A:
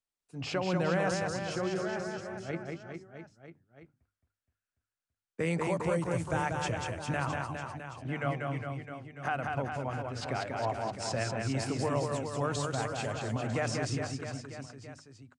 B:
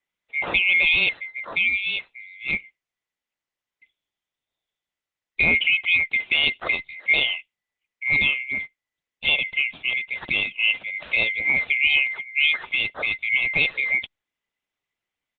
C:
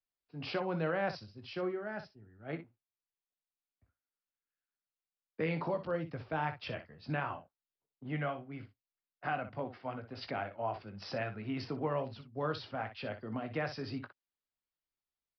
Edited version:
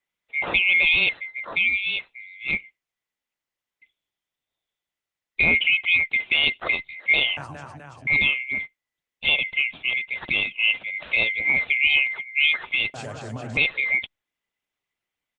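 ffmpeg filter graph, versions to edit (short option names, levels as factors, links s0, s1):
-filter_complex "[0:a]asplit=2[s0][s1];[1:a]asplit=3[s2][s3][s4];[s2]atrim=end=7.372[s5];[s0]atrim=start=7.368:end=8.072[s6];[s3]atrim=start=8.068:end=12.942[s7];[s1]atrim=start=12.938:end=13.572[s8];[s4]atrim=start=13.568[s9];[s5][s6]acrossfade=d=0.004:c1=hsin:c2=hsin[s10];[s10][s7]acrossfade=d=0.004:c1=hsin:c2=hsin[s11];[s11][s8]acrossfade=d=0.004:c1=hsin:c2=hsin[s12];[s12][s9]acrossfade=d=0.004:c1=hsin:c2=hsin"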